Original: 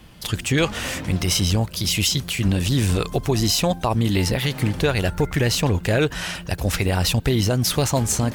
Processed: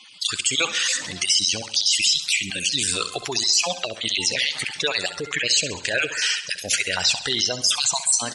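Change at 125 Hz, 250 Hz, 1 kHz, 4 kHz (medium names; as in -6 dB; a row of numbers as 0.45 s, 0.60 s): -21.0 dB, -14.5 dB, -4.5 dB, +5.5 dB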